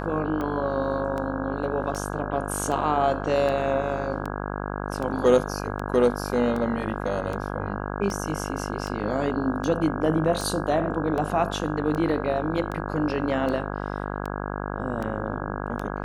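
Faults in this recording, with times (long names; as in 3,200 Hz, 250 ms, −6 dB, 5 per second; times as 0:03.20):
mains buzz 50 Hz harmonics 33 −31 dBFS
scratch tick 78 rpm −19 dBFS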